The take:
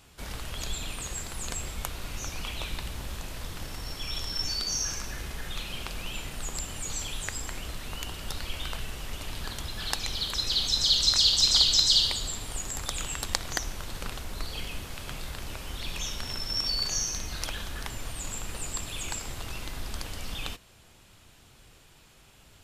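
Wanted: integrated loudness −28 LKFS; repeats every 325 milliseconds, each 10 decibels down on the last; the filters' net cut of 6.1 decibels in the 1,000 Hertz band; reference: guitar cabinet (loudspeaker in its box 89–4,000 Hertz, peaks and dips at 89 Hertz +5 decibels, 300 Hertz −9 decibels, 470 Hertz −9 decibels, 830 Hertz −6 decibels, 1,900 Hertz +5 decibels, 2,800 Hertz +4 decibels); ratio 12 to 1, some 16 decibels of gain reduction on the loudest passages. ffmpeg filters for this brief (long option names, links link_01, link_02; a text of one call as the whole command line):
ffmpeg -i in.wav -af "equalizer=frequency=1000:width_type=o:gain=-5.5,acompressor=threshold=-34dB:ratio=12,highpass=89,equalizer=frequency=89:width_type=q:width=4:gain=5,equalizer=frequency=300:width_type=q:width=4:gain=-9,equalizer=frequency=470:width_type=q:width=4:gain=-9,equalizer=frequency=830:width_type=q:width=4:gain=-6,equalizer=frequency=1900:width_type=q:width=4:gain=5,equalizer=frequency=2800:width_type=q:width=4:gain=4,lowpass=frequency=4000:width=0.5412,lowpass=frequency=4000:width=1.3066,aecho=1:1:325|650|975|1300:0.316|0.101|0.0324|0.0104,volume=13dB" out.wav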